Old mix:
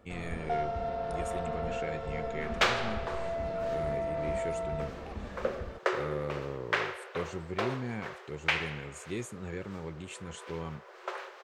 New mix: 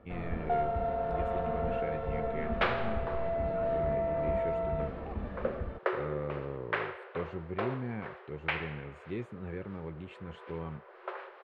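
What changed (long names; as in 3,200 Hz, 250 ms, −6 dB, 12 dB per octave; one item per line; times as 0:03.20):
first sound +3.5 dB
master: add high-frequency loss of the air 430 metres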